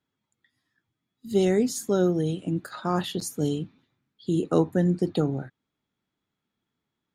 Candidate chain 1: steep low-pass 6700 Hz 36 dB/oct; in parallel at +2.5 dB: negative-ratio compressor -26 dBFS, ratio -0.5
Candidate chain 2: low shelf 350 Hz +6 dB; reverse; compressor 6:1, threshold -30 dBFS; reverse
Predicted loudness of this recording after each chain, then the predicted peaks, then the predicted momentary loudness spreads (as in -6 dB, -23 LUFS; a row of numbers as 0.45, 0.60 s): -21.5, -34.5 LUFS; -5.5, -21.0 dBFS; 6, 5 LU